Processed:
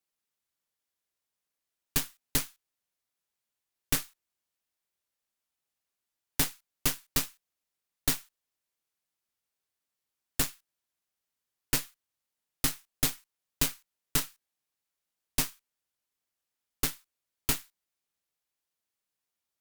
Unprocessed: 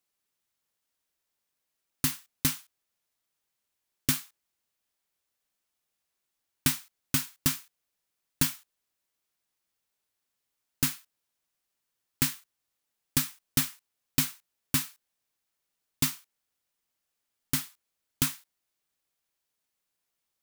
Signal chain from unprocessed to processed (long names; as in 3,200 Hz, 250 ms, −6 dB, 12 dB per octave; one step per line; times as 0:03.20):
harmonic generator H 8 −8 dB, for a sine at −9 dBFS
wrong playback speed 24 fps film run at 25 fps
level −4.5 dB